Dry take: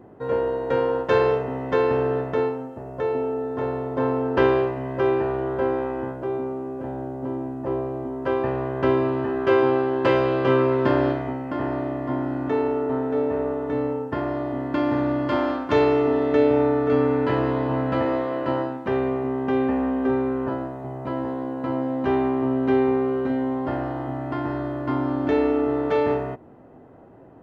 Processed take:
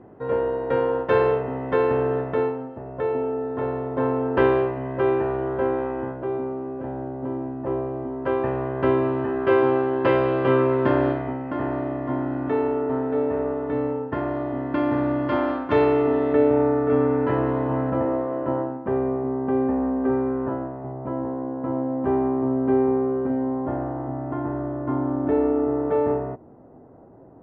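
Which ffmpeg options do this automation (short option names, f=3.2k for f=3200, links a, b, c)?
-af "asetnsamples=n=441:p=0,asendcmd='16.33 lowpass f 1800;17.9 lowpass f 1100;20.04 lowpass f 1500;20.92 lowpass f 1100',lowpass=2.8k"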